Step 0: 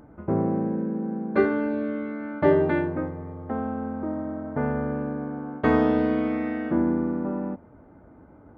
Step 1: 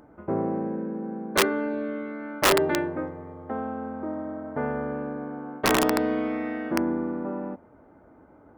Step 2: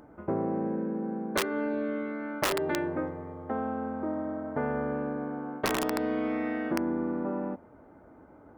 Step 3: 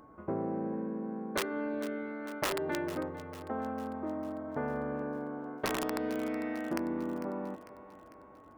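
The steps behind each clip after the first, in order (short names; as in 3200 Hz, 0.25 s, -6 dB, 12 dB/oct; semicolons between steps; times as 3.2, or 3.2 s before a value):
wrapped overs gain 12 dB; tone controls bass -8 dB, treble +1 dB
compressor 10:1, threshold -25 dBFS, peak gain reduction 10 dB
thinning echo 0.449 s, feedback 57%, high-pass 280 Hz, level -14 dB; whine 1100 Hz -53 dBFS; gain -4.5 dB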